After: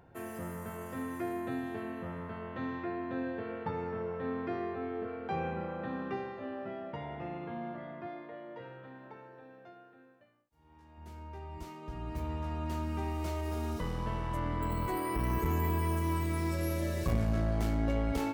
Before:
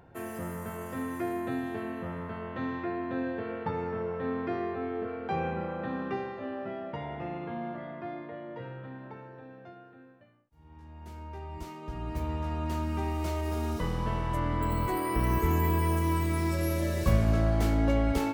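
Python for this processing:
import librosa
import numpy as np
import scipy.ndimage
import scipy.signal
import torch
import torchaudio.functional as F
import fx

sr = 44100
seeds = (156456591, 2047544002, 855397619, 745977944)

y = fx.bass_treble(x, sr, bass_db=-8, treble_db=2, at=(8.07, 10.98))
y = fx.transformer_sat(y, sr, knee_hz=180.0)
y = y * 10.0 ** (-3.5 / 20.0)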